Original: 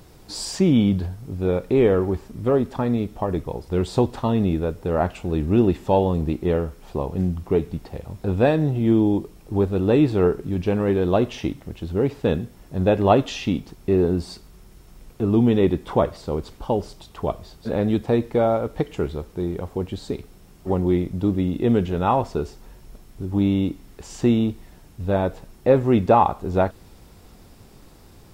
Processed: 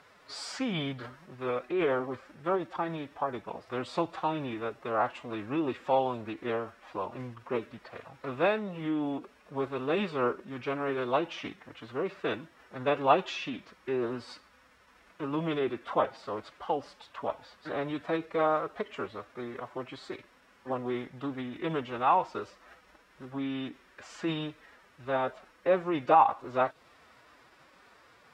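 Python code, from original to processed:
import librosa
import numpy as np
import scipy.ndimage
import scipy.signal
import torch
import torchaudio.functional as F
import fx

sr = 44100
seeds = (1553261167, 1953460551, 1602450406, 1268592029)

y = fx.pitch_keep_formants(x, sr, semitones=5.5)
y = fx.bandpass_q(y, sr, hz=1600.0, q=1.5)
y = fx.dynamic_eq(y, sr, hz=1700.0, q=1.8, threshold_db=-50.0, ratio=4.0, max_db=-7)
y = y * 10.0 ** (4.5 / 20.0)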